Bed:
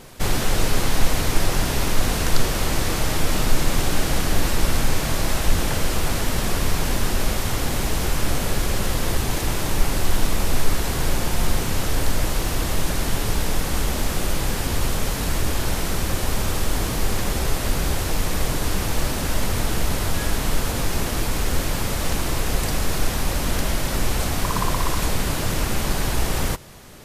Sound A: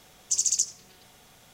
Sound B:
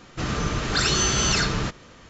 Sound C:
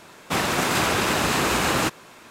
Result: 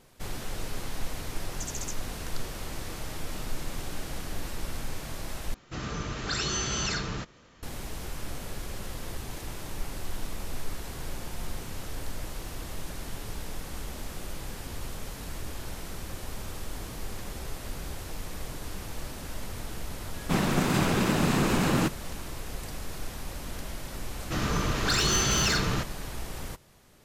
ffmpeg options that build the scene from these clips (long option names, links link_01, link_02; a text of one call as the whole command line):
ffmpeg -i bed.wav -i cue0.wav -i cue1.wav -i cue2.wav -filter_complex "[2:a]asplit=2[link_01][link_02];[0:a]volume=-15dB[link_03];[3:a]equalizer=frequency=170:width_type=o:width=2.1:gain=13.5[link_04];[link_02]volume=17.5dB,asoftclip=hard,volume=-17.5dB[link_05];[link_03]asplit=2[link_06][link_07];[link_06]atrim=end=5.544[link_08];[link_01]atrim=end=2.09,asetpts=PTS-STARTPTS,volume=-8.5dB[link_09];[link_07]atrim=start=7.626[link_10];[1:a]atrim=end=1.53,asetpts=PTS-STARTPTS,volume=-14.5dB,afade=type=in:duration=0.004:curve=hsin,afade=type=out:start_time=1.526:duration=0.004:curve=hsin,adelay=1290[link_11];[link_04]atrim=end=2.3,asetpts=PTS-STARTPTS,volume=-8.5dB,afade=type=in:duration=0.004:curve=hsin,afade=type=out:start_time=2.296:duration=0.004:curve=hsin,adelay=19990[link_12];[link_05]atrim=end=2.09,asetpts=PTS-STARTPTS,volume=-2.5dB,afade=type=in:duration=0.004:curve=hsin,afade=type=out:start_time=2.086:duration=0.004:curve=hsin,adelay=24130[link_13];[link_08][link_09]acrossfade=duration=0.004:curve1=hsin:curve2=hsin[link_14];[link_14][link_10]acrossfade=duration=0.004:curve1=hsin:curve2=hsin[link_15];[link_15][link_11][link_12][link_13]amix=inputs=4:normalize=0" out.wav